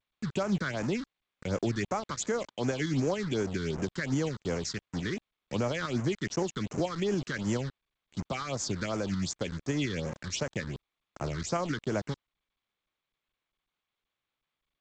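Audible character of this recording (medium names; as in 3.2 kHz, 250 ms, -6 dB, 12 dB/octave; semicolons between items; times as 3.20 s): a quantiser's noise floor 6-bit, dither none; tremolo saw up 7 Hz, depth 30%; phasing stages 6, 2.7 Hz, lowest notch 660–3800 Hz; G.722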